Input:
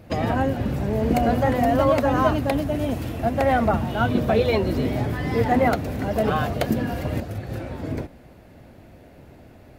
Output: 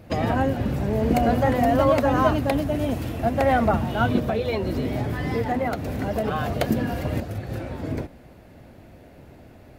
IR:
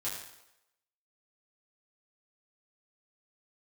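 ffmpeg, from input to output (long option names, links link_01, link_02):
-filter_complex "[0:a]asplit=3[link_01][link_02][link_03];[link_01]afade=type=out:start_time=4.19:duration=0.02[link_04];[link_02]acompressor=threshold=-21dB:ratio=6,afade=type=in:start_time=4.19:duration=0.02,afade=type=out:start_time=6.45:duration=0.02[link_05];[link_03]afade=type=in:start_time=6.45:duration=0.02[link_06];[link_04][link_05][link_06]amix=inputs=3:normalize=0"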